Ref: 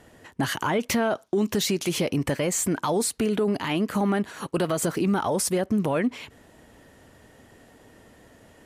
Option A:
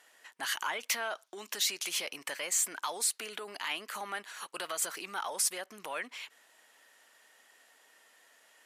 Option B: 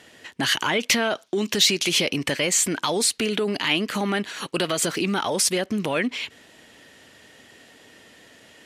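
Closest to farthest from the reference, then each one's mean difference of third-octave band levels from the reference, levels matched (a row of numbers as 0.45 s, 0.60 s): B, A; 4.0 dB, 9.5 dB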